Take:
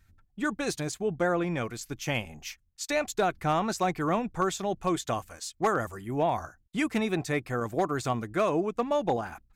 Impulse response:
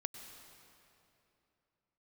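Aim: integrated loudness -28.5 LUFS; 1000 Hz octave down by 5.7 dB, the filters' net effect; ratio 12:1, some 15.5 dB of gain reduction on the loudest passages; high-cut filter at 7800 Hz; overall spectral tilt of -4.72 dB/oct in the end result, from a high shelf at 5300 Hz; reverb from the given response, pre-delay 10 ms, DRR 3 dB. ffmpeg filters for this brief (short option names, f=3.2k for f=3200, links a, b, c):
-filter_complex "[0:a]lowpass=7.8k,equalizer=f=1k:t=o:g=-8,highshelf=f=5.3k:g=-4,acompressor=threshold=-40dB:ratio=12,asplit=2[a][b];[1:a]atrim=start_sample=2205,adelay=10[c];[b][c]afir=irnorm=-1:irlink=0,volume=-1.5dB[d];[a][d]amix=inputs=2:normalize=0,volume=14.5dB"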